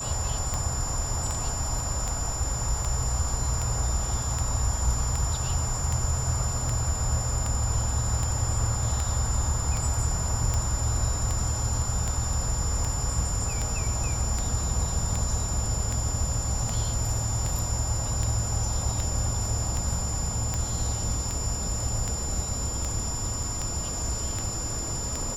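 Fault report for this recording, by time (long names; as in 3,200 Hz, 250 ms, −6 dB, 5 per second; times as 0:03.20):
scratch tick 78 rpm −15 dBFS
whistle 7,100 Hz −32 dBFS
0:23.43: drop-out 3.6 ms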